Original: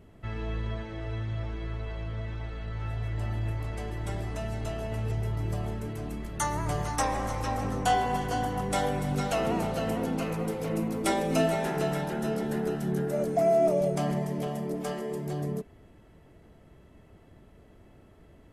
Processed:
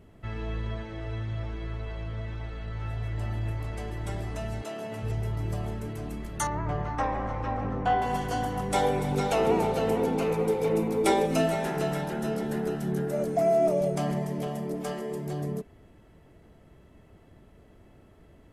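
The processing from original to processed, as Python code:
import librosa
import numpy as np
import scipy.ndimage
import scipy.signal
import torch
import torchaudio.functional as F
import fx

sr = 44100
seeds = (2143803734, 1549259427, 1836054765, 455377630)

y = fx.highpass(x, sr, hz=fx.line((4.61, 250.0), (5.02, 120.0)), slope=24, at=(4.61, 5.02), fade=0.02)
y = fx.lowpass(y, sr, hz=2100.0, slope=12, at=(6.47, 8.02))
y = fx.small_body(y, sr, hz=(430.0, 850.0, 2300.0, 3600.0), ring_ms=35, db=11, at=(8.74, 11.26))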